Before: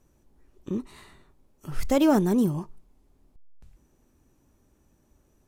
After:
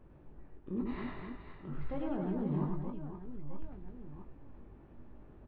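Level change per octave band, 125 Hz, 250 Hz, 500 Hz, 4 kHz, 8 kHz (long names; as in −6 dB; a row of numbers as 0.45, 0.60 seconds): −6.0 dB, −11.5 dB, −13.5 dB, below −15 dB, below −35 dB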